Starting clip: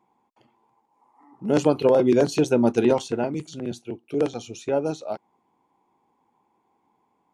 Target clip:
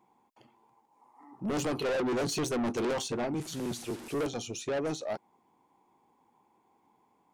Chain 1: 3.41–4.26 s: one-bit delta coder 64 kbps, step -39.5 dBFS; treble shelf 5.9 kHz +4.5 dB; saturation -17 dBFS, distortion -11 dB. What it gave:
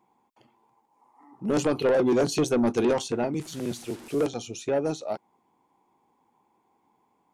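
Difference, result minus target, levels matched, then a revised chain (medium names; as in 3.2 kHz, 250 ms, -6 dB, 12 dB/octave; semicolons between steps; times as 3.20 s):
saturation: distortion -7 dB
3.41–4.26 s: one-bit delta coder 64 kbps, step -39.5 dBFS; treble shelf 5.9 kHz +4.5 dB; saturation -28 dBFS, distortion -4 dB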